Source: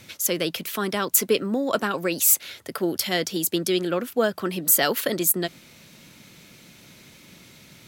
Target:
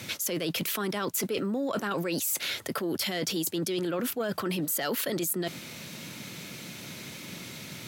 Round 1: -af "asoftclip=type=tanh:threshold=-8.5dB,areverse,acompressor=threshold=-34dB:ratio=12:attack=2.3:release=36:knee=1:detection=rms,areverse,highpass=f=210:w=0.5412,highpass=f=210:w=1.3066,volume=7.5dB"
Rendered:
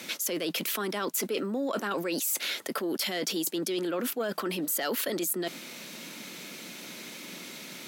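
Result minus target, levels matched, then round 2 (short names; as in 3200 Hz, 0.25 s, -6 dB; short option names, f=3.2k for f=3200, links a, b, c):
125 Hz band -7.0 dB
-af "asoftclip=type=tanh:threshold=-8.5dB,areverse,acompressor=threshold=-34dB:ratio=12:attack=2.3:release=36:knee=1:detection=rms,areverse,highpass=f=86:w=0.5412,highpass=f=86:w=1.3066,volume=7.5dB"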